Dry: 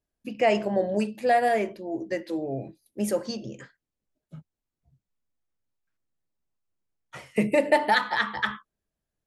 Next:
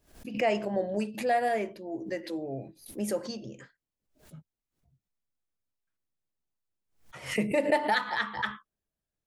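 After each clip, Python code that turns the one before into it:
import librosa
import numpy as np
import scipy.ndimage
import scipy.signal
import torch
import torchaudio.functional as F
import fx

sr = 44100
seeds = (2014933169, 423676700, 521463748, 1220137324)

y = fx.pre_swell(x, sr, db_per_s=130.0)
y = y * librosa.db_to_amplitude(-5.0)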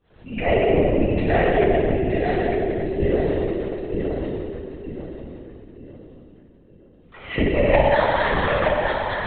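y = fx.echo_feedback(x, sr, ms=922, feedback_pct=36, wet_db=-5.0)
y = fx.rev_fdn(y, sr, rt60_s=2.6, lf_ratio=1.45, hf_ratio=0.9, size_ms=15.0, drr_db=-7.5)
y = fx.lpc_vocoder(y, sr, seeds[0], excitation='whisper', order=16)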